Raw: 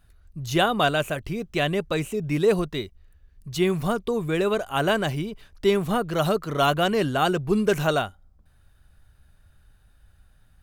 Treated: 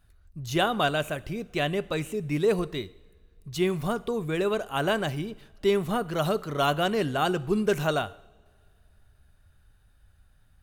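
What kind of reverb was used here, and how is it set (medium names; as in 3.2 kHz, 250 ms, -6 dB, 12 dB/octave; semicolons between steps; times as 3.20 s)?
two-slope reverb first 0.75 s, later 2.7 s, from -18 dB, DRR 16.5 dB; trim -3.5 dB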